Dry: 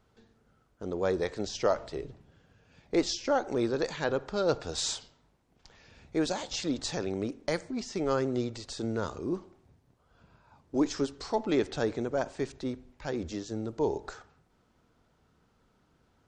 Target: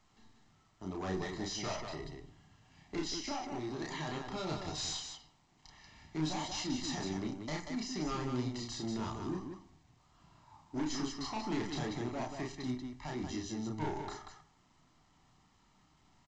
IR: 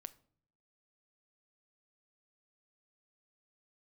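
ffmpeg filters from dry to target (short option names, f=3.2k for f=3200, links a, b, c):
-filter_complex "[0:a]aecho=1:1:1:0.96,asettb=1/sr,asplit=3[a][b][c];[a]atrim=end=3.004[d];[b]atrim=start=3:end=4.07,asetpts=PTS-STARTPTS,afade=t=in:d=0.004:c=qsin,afade=t=out:st=1.066:d=0.004:c=qsin,acompressor=threshold=-31dB:ratio=4[e];[c]atrim=start=4.066[f];[d][e]acrossfade=d=0.004:c1=hsin:c2=qsin[g];[g][f]acrossfade=d=0.004:c1=qsin:c2=hsin,acrossover=split=250[h][i];[h]flanger=delay=4.4:depth=5.7:regen=82:speed=1:shape=sinusoidal[j];[i]asoftclip=type=hard:threshold=-33dB[k];[j][k]amix=inputs=2:normalize=0,aecho=1:1:32.07|186.6:0.794|0.562[l];[1:a]atrim=start_sample=2205,afade=t=out:st=0.42:d=0.01,atrim=end_sample=18963[m];[l][m]afir=irnorm=-1:irlink=0" -ar 16000 -c:a pcm_alaw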